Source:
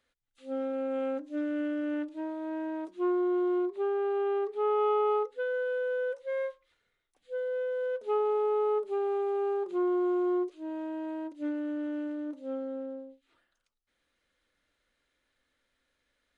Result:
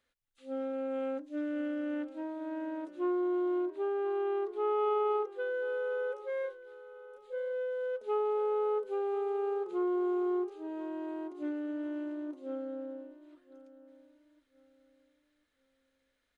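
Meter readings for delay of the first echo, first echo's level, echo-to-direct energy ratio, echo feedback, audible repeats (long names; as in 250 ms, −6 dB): 1,041 ms, −17.0 dB, −16.5 dB, 29%, 2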